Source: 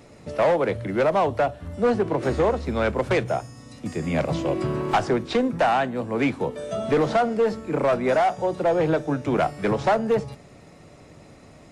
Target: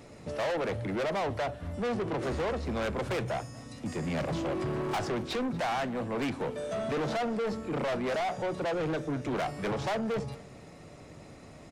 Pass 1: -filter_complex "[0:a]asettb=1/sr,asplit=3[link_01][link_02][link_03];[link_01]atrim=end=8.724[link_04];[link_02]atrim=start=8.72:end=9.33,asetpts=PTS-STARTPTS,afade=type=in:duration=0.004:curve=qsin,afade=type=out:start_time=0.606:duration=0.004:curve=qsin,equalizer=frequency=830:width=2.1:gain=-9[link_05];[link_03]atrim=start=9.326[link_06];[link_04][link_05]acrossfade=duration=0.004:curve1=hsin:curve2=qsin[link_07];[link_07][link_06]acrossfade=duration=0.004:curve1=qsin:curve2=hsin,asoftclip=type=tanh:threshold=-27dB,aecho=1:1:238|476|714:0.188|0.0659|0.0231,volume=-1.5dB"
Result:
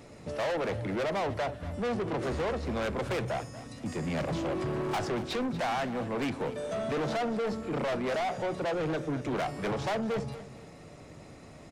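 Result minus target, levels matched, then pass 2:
echo-to-direct +7 dB
-filter_complex "[0:a]asettb=1/sr,asplit=3[link_01][link_02][link_03];[link_01]atrim=end=8.724[link_04];[link_02]atrim=start=8.72:end=9.33,asetpts=PTS-STARTPTS,afade=type=in:duration=0.004:curve=qsin,afade=type=out:start_time=0.606:duration=0.004:curve=qsin,equalizer=frequency=830:width=2.1:gain=-9[link_05];[link_03]atrim=start=9.326[link_06];[link_04][link_05]acrossfade=duration=0.004:curve1=hsin:curve2=qsin[link_07];[link_07][link_06]acrossfade=duration=0.004:curve1=qsin:curve2=hsin,asoftclip=type=tanh:threshold=-27dB,aecho=1:1:238|476|714:0.0841|0.0294|0.0103,volume=-1.5dB"

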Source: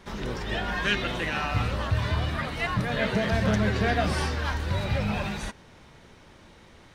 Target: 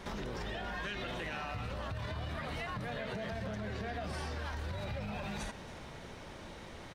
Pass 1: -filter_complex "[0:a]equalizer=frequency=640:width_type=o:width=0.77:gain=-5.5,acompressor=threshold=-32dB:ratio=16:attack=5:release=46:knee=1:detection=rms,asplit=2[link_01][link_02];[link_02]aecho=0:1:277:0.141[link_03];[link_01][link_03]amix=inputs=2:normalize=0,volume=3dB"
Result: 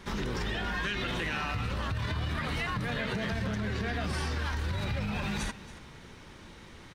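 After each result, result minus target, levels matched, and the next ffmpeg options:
downward compressor: peak gain reduction −8 dB; 500 Hz band −4.5 dB
-filter_complex "[0:a]equalizer=frequency=640:width_type=o:width=0.77:gain=-5.5,acompressor=threshold=-39.5dB:ratio=16:attack=5:release=46:knee=1:detection=rms,asplit=2[link_01][link_02];[link_02]aecho=0:1:277:0.141[link_03];[link_01][link_03]amix=inputs=2:normalize=0,volume=3dB"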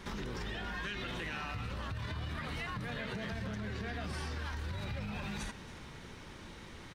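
500 Hz band −4.0 dB
-filter_complex "[0:a]equalizer=frequency=640:width_type=o:width=0.77:gain=3.5,acompressor=threshold=-39.5dB:ratio=16:attack=5:release=46:knee=1:detection=rms,asplit=2[link_01][link_02];[link_02]aecho=0:1:277:0.141[link_03];[link_01][link_03]amix=inputs=2:normalize=0,volume=3dB"

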